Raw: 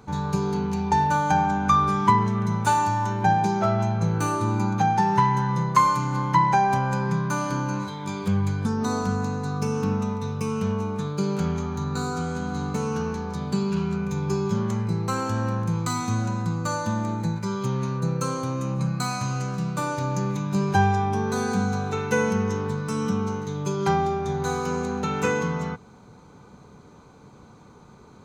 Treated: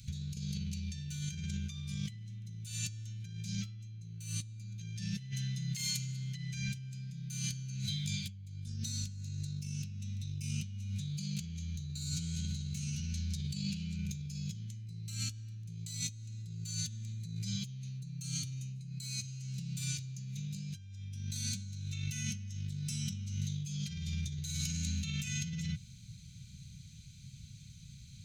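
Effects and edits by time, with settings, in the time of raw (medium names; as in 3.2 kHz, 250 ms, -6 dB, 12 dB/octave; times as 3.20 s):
5.30–6.51 s: high-pass 390 Hz -> 110 Hz 6 dB/octave
whole clip: inverse Chebyshev band-stop 400–990 Hz, stop band 70 dB; bass shelf 88 Hz -4.5 dB; compressor with a negative ratio -40 dBFS, ratio -1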